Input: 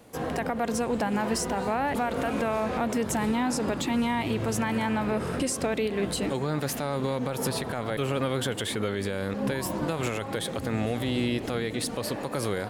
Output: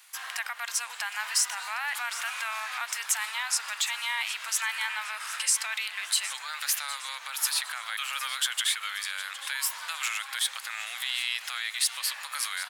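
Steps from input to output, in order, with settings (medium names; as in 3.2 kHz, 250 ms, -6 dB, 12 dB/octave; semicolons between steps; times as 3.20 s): Bessel high-pass 1.9 kHz, order 6; feedback delay 762 ms, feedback 43%, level -14 dB; trim +7.5 dB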